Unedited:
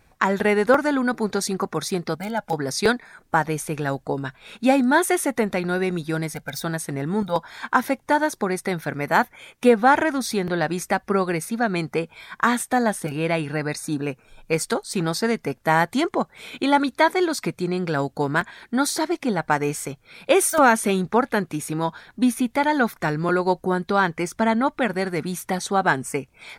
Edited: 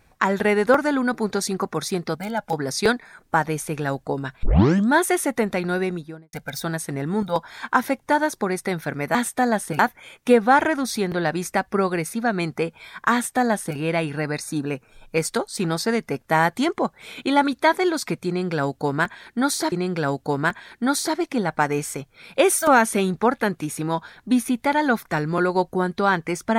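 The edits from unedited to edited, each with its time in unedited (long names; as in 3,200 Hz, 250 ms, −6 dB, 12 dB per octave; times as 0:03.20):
0:04.43: tape start 0.47 s
0:05.75–0:06.33: fade out and dull
0:12.49–0:13.13: duplicate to 0:09.15
0:17.63–0:19.08: repeat, 2 plays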